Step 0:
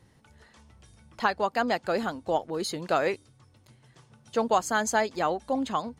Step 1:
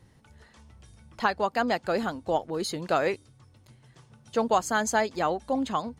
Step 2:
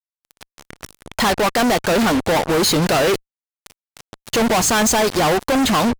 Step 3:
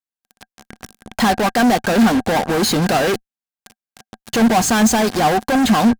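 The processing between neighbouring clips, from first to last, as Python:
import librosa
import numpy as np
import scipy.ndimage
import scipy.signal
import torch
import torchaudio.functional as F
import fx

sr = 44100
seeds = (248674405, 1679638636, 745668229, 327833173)

y1 = fx.low_shelf(x, sr, hz=140.0, db=4.5)
y2 = fx.leveller(y1, sr, passes=2)
y2 = fx.fuzz(y2, sr, gain_db=41.0, gate_db=-42.0)
y2 = y2 * 10.0 ** (-1.5 / 20.0)
y3 = fx.small_body(y2, sr, hz=(220.0, 750.0, 1600.0), ring_ms=50, db=9)
y3 = y3 * 10.0 ** (-2.0 / 20.0)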